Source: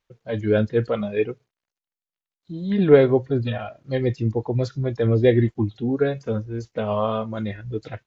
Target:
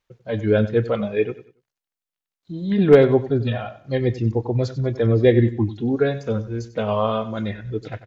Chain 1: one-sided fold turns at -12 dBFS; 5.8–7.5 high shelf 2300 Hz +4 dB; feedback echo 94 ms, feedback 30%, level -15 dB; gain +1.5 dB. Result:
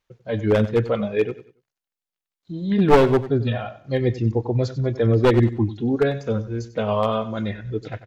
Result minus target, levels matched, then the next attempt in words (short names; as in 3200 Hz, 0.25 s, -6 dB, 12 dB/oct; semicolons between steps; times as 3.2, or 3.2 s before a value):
one-sided fold: distortion +22 dB
one-sided fold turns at -4 dBFS; 5.8–7.5 high shelf 2300 Hz +4 dB; feedback echo 94 ms, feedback 30%, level -15 dB; gain +1.5 dB